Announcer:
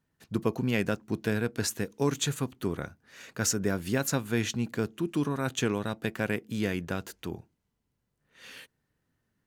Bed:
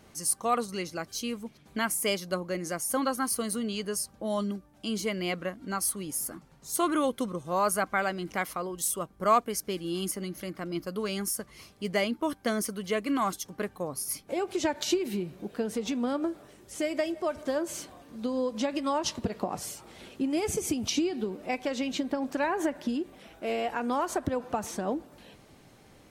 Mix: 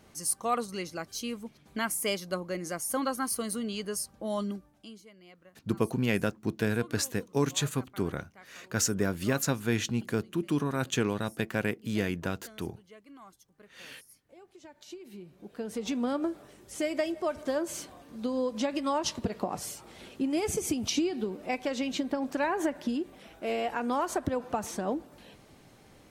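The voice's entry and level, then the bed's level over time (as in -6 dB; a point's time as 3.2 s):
5.35 s, 0.0 dB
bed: 4.68 s -2 dB
5.04 s -23.5 dB
14.64 s -23.5 dB
15.92 s -0.5 dB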